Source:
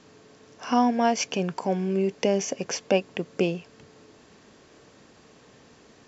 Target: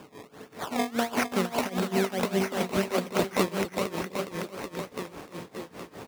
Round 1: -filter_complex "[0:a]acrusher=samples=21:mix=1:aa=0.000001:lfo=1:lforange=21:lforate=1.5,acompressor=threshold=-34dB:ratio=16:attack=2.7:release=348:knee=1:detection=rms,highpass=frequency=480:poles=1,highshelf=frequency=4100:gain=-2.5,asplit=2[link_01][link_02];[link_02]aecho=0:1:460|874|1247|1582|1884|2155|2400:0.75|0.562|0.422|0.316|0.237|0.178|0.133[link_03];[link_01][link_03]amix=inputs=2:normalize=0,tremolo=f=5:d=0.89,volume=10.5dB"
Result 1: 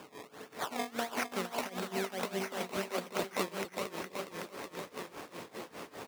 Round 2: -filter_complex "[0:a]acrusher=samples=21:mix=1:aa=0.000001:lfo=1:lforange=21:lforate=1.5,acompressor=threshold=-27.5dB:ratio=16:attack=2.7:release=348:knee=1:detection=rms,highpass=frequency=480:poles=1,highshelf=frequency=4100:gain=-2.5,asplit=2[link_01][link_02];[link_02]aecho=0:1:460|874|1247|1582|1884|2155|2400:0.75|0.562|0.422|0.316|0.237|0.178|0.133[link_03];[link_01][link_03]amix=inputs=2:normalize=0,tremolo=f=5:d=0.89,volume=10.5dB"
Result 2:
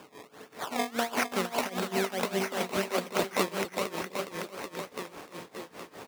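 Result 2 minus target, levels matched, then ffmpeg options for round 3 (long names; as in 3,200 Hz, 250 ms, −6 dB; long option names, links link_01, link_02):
125 Hz band −4.5 dB
-filter_complex "[0:a]acrusher=samples=21:mix=1:aa=0.000001:lfo=1:lforange=21:lforate=1.5,acompressor=threshold=-27.5dB:ratio=16:attack=2.7:release=348:knee=1:detection=rms,highpass=frequency=140:poles=1,highshelf=frequency=4100:gain=-2.5,asplit=2[link_01][link_02];[link_02]aecho=0:1:460|874|1247|1582|1884|2155|2400:0.75|0.562|0.422|0.316|0.237|0.178|0.133[link_03];[link_01][link_03]amix=inputs=2:normalize=0,tremolo=f=5:d=0.89,volume=10.5dB"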